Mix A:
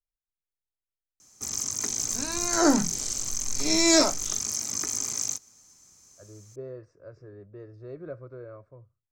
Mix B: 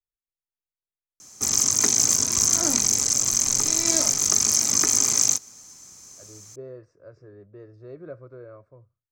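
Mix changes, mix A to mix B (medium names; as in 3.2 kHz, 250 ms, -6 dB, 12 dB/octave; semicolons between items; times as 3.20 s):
first sound +10.0 dB; second sound -10.0 dB; master: add bass shelf 60 Hz -7.5 dB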